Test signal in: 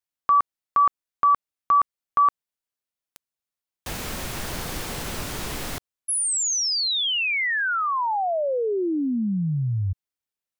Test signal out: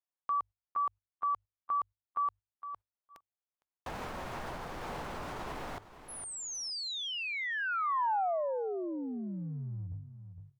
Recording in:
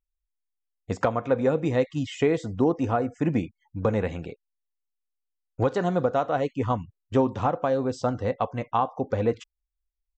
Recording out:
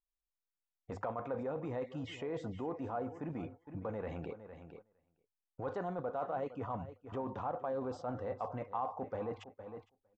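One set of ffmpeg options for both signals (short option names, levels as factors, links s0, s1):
-filter_complex "[0:a]bandreject=f=50:t=h:w=6,bandreject=f=100:t=h:w=6,areverse,acompressor=threshold=0.0398:ratio=12:attack=0.32:release=124:knee=6:detection=peak,areverse,lowpass=f=2100:p=1,asplit=2[s0][s1];[s1]aecho=0:1:459|918:0.158|0.0269[s2];[s0][s2]amix=inputs=2:normalize=0,alimiter=level_in=3.55:limit=0.0631:level=0:latency=1:release=490,volume=0.282,equalizer=f=890:t=o:w=1.8:g=9.5,agate=range=0.251:threshold=0.00158:ratio=16:release=150:detection=peak"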